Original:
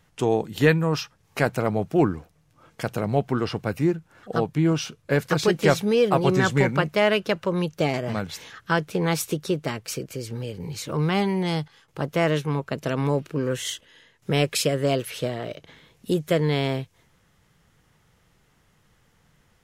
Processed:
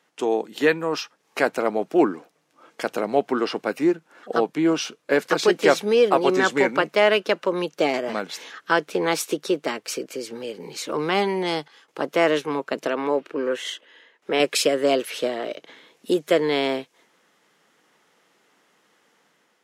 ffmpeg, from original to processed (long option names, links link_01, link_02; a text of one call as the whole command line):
ffmpeg -i in.wav -filter_complex "[0:a]asettb=1/sr,asplit=3[link_01][link_02][link_03];[link_01]atrim=end=12.874[link_04];[link_02]atrim=start=12.87:end=14.4,asetpts=PTS-STARTPTS,afade=type=in:duration=0.004:curve=qsin,afade=type=out:start_time=1.526:duration=0.004:curve=qsin,bass=frequency=250:gain=-8,treble=frequency=4000:gain=-10[link_05];[link_03]atrim=start=14.396[link_06];[link_04][link_05]acrossfade=duration=0.004:curve1=hsin:curve2=qsin[link_07];[link_07][link_06]acrossfade=duration=0.004:curve1=qsin:curve2=hsin,highpass=frequency=260:width=0.5412,highpass=frequency=260:width=1.3066,highshelf=frequency=12000:gain=-10.5,dynaudnorm=framelen=600:gausssize=3:maxgain=4dB" out.wav